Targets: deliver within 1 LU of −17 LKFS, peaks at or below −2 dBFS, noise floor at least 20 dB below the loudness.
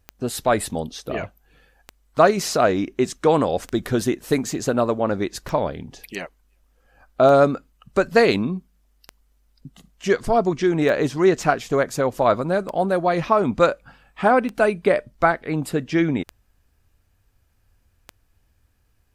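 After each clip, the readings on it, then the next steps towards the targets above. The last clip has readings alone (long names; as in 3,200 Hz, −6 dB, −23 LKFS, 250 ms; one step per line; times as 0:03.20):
number of clicks 11; integrated loudness −21.0 LKFS; sample peak −2.0 dBFS; target loudness −17.0 LKFS
→ click removal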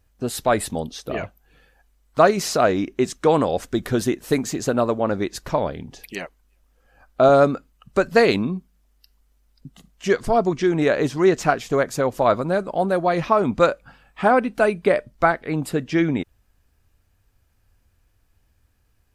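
number of clicks 0; integrated loudness −21.0 LKFS; sample peak −2.0 dBFS; target loudness −17.0 LKFS
→ level +4 dB
brickwall limiter −2 dBFS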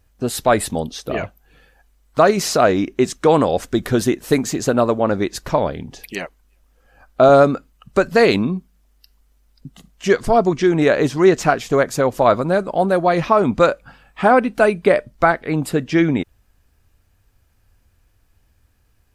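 integrated loudness −17.5 LKFS; sample peak −2.0 dBFS; background noise floor −60 dBFS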